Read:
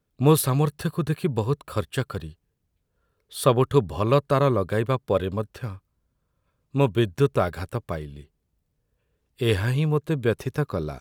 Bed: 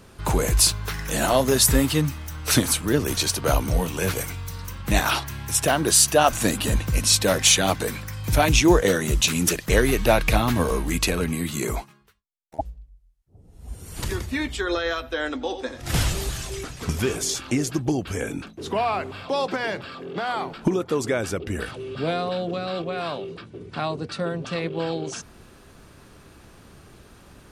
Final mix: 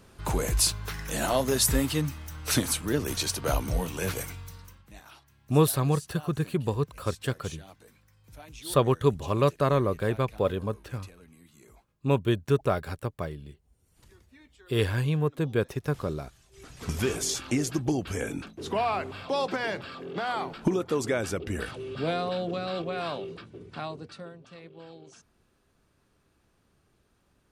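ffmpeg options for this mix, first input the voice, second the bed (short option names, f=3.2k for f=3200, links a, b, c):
-filter_complex "[0:a]adelay=5300,volume=-3.5dB[a];[1:a]volume=19.5dB,afade=t=out:st=4.22:d=0.67:silence=0.0707946,afade=t=in:st=16.52:d=0.5:silence=0.0530884,afade=t=out:st=23.23:d=1.15:silence=0.149624[b];[a][b]amix=inputs=2:normalize=0"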